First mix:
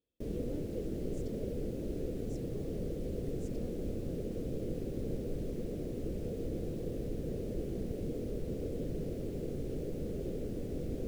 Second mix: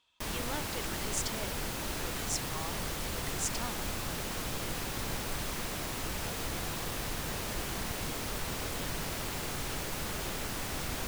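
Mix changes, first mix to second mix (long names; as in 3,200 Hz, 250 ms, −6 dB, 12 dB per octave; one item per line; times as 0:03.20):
speech +4.5 dB
master: remove drawn EQ curve 100 Hz 0 dB, 490 Hz +6 dB, 940 Hz −28 dB, 2,300 Hz −22 dB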